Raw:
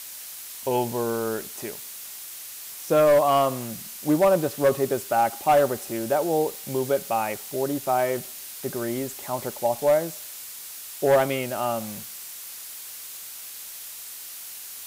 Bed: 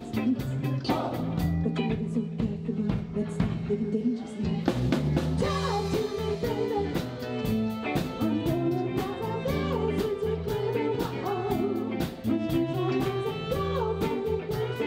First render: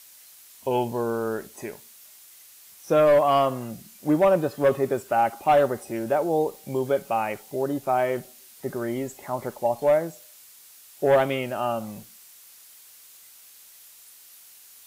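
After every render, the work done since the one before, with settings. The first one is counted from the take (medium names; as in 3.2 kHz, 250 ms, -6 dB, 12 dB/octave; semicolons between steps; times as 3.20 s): noise print and reduce 11 dB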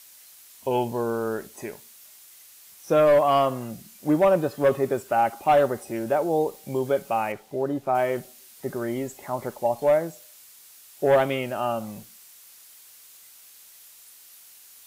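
7.32–7.95 s: treble shelf 4.7 kHz -11.5 dB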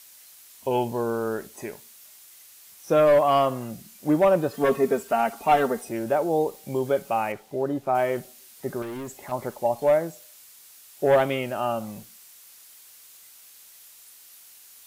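4.53–5.89 s: comb 4.4 ms, depth 82%; 8.82–9.32 s: overload inside the chain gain 32 dB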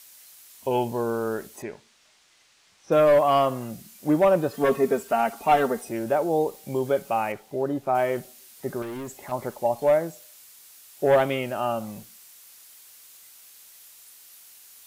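1.62–2.92 s: distance through air 120 m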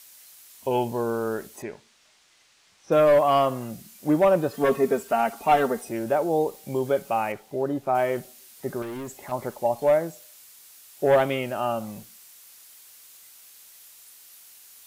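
no audible change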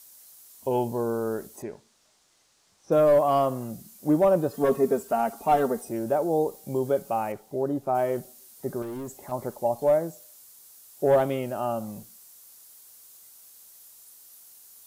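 peaking EQ 2.4 kHz -10.5 dB 1.8 oct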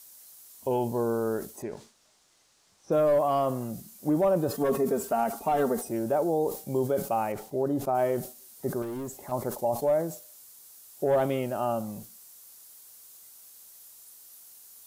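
peak limiter -17.5 dBFS, peak gain reduction 7 dB; decay stretcher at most 130 dB/s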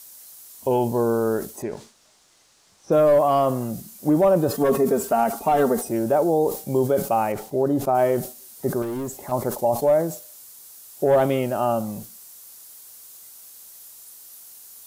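trim +6.5 dB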